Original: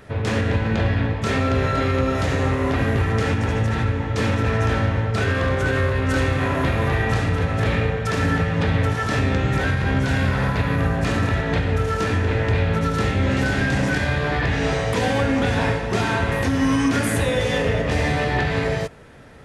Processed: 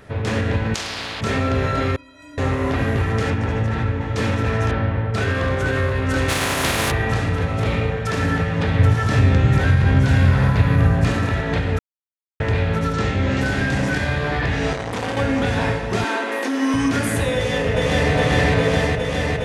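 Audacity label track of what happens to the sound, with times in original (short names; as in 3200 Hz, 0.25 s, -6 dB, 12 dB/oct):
0.740000	1.210000	spectral compressor 10:1
1.960000	2.380000	metallic resonator 290 Hz, decay 0.68 s, inharmonicity 0.03
3.300000	4.010000	high shelf 4900 Hz -9.5 dB
4.710000	5.140000	air absorption 260 m
6.280000	6.900000	spectral contrast lowered exponent 0.43
7.490000	7.910000	notch 1700 Hz, Q 6.8
8.790000	11.120000	bell 99 Hz +8 dB 1.5 oct
11.790000	12.400000	mute
12.930000	13.410000	LPF 7900 Hz 24 dB/oct
14.730000	15.170000	core saturation saturates under 860 Hz
16.040000	16.740000	steep high-pass 230 Hz 72 dB/oct
17.350000	18.130000	echo throw 0.41 s, feedback 85%, level 0 dB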